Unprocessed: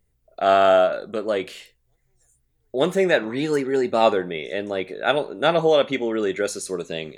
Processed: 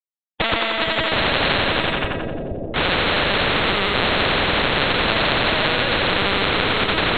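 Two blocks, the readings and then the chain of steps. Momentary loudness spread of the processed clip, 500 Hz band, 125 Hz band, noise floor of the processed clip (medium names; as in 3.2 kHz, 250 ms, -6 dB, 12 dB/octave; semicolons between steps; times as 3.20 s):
5 LU, -3.5 dB, +9.0 dB, under -85 dBFS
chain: formants replaced by sine waves; de-esser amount 40%; hum notches 60/120/180/240/300 Hz; plate-style reverb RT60 2.1 s, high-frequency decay 0.75×, DRR -7.5 dB; in parallel at -3 dB: compression 8:1, threshold -24 dBFS, peak gain reduction 21.5 dB; on the sum: harmonic-percussive split harmonic -4 dB; Schmitt trigger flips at -19.5 dBFS; peak limiter -21.5 dBFS, peak gain reduction 11 dB; distance through air 130 m; LPC vocoder at 8 kHz pitch kept; on a send: two-band feedback delay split 420 Hz, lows 471 ms, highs 88 ms, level -6 dB; on the sum: spectrum-flattening compressor 4:1; trim +6.5 dB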